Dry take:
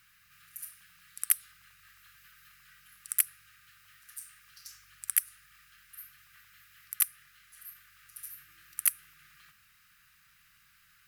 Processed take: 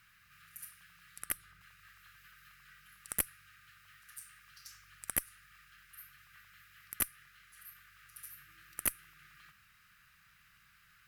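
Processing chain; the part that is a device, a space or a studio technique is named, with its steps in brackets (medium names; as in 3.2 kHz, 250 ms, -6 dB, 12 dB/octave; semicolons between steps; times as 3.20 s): 1.19–1.61 s: tilt shelf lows +5.5 dB, about 1.3 kHz; tube preamp driven hard (valve stage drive 11 dB, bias 0.25; treble shelf 3.3 kHz -8.5 dB); trim +3 dB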